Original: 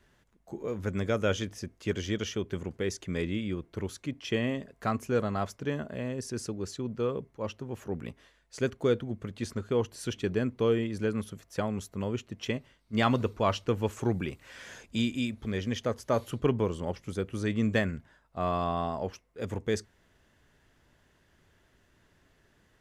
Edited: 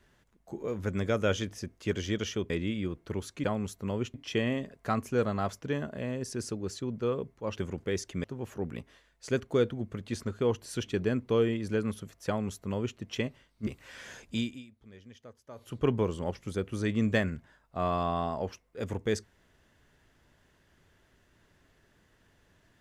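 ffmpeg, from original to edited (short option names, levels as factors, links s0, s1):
-filter_complex "[0:a]asplit=9[s0][s1][s2][s3][s4][s5][s6][s7][s8];[s0]atrim=end=2.502[s9];[s1]atrim=start=3.168:end=4.112[s10];[s2]atrim=start=11.568:end=12.272[s11];[s3]atrim=start=4.108:end=7.542[s12];[s4]atrim=start=2.498:end=3.172[s13];[s5]atrim=start=7.538:end=12.972[s14];[s6]atrim=start=14.278:end=15.24,asetpts=PTS-STARTPTS,afade=t=out:st=0.632:d=0.33:silence=0.1[s15];[s7]atrim=start=15.24:end=16.17,asetpts=PTS-STARTPTS,volume=0.1[s16];[s8]atrim=start=16.17,asetpts=PTS-STARTPTS,afade=t=in:d=0.33:silence=0.1[s17];[s9][s10]acrossfade=d=0.004:c1=hsin:c2=hsin[s18];[s18][s11]acrossfade=d=0.004:c1=hsin:c2=hsin[s19];[s19][s12]acrossfade=d=0.004:c1=hsin:c2=hsin[s20];[s20][s13]acrossfade=d=0.004:c1=hsin:c2=hsin[s21];[s21][s14]acrossfade=d=0.004:c1=hsin:c2=hsin[s22];[s15][s16][s17]concat=n=3:v=0:a=1[s23];[s22][s23]acrossfade=d=0.004:c1=hsin:c2=hsin"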